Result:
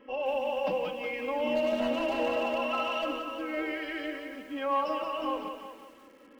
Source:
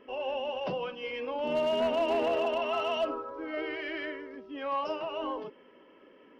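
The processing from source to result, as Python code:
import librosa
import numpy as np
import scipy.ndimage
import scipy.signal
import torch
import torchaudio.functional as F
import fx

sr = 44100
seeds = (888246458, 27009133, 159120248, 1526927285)

y = fx.rattle_buzz(x, sr, strikes_db=-47.0, level_db=-43.0)
y = y + 0.83 * np.pad(y, (int(3.7 * sr / 1000.0), 0))[:len(y)]
y = fx.echo_thinned(y, sr, ms=363, feedback_pct=21, hz=370.0, wet_db=-11.0)
y = fx.echo_crushed(y, sr, ms=177, feedback_pct=35, bits=9, wet_db=-7)
y = y * 10.0 ** (-1.5 / 20.0)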